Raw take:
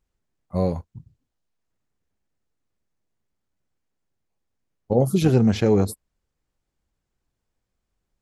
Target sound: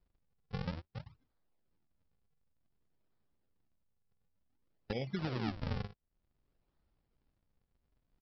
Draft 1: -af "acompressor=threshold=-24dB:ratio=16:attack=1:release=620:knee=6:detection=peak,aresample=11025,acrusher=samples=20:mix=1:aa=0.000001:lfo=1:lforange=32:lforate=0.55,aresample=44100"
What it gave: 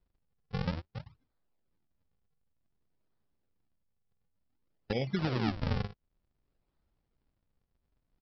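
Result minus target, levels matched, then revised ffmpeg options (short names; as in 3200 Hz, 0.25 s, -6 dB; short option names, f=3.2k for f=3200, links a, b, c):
compressor: peak gain reduction -5.5 dB
-af "acompressor=threshold=-30dB:ratio=16:attack=1:release=620:knee=6:detection=peak,aresample=11025,acrusher=samples=20:mix=1:aa=0.000001:lfo=1:lforange=32:lforate=0.55,aresample=44100"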